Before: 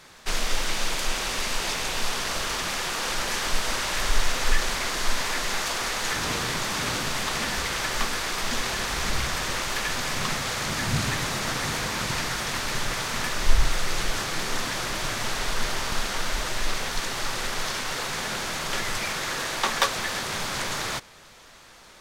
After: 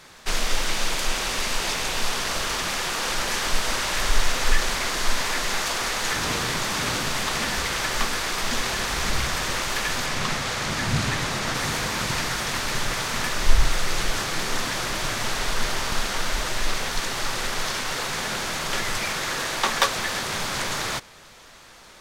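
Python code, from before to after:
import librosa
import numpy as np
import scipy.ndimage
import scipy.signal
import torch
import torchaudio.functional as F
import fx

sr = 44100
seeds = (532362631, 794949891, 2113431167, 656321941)

y = fx.high_shelf(x, sr, hz=10000.0, db=-8.0, at=(10.06, 11.55))
y = y * 10.0 ** (2.0 / 20.0)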